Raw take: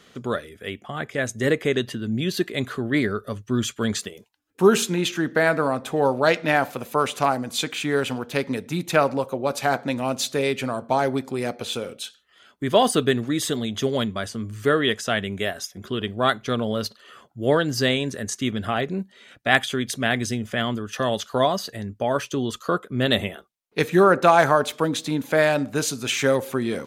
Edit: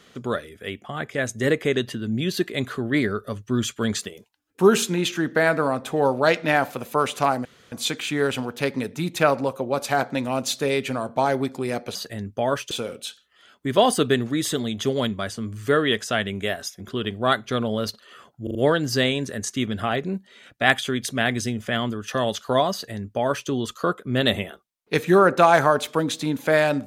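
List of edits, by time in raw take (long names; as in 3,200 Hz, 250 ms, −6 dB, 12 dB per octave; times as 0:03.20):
0:07.45: splice in room tone 0.27 s
0:17.40: stutter 0.04 s, 4 plays
0:21.58–0:22.34: duplicate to 0:11.68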